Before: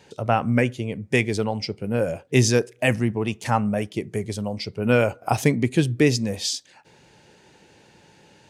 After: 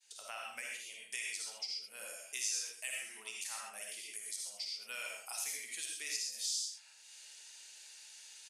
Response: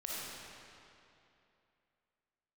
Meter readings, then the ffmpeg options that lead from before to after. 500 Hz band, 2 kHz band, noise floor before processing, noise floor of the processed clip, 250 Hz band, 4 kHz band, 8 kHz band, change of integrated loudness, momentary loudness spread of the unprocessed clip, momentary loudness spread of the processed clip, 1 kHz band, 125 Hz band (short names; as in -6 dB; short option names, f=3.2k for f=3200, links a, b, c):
-34.0 dB, -15.5 dB, -55 dBFS, -59 dBFS, under -40 dB, -9.0 dB, -5.0 dB, -16.5 dB, 9 LU, 16 LU, -25.0 dB, under -40 dB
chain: -filter_complex "[0:a]aderivative,agate=range=-33dB:threshold=-56dB:ratio=3:detection=peak,highpass=f=1.5k:p=1,aecho=1:1:79:0.316,asoftclip=type=tanh:threshold=-12.5dB,highshelf=f=6.7k:g=7,areverse,acompressor=mode=upward:threshold=-51dB:ratio=2.5,areverse,lowpass=f=11k:w=0.5412,lowpass=f=11k:w=1.3066[a];[1:a]atrim=start_sample=2205,atrim=end_sample=6174[b];[a][b]afir=irnorm=-1:irlink=0,acompressor=threshold=-59dB:ratio=2,volume=9dB"